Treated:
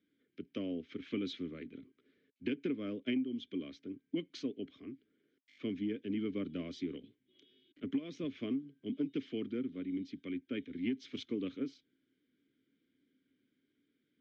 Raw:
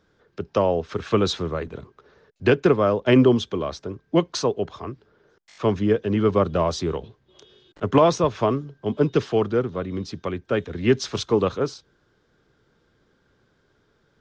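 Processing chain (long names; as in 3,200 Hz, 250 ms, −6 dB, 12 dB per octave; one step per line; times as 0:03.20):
formant filter i
downward compressor 16 to 1, threshold −30 dBFS, peak gain reduction 16.5 dB
level −1 dB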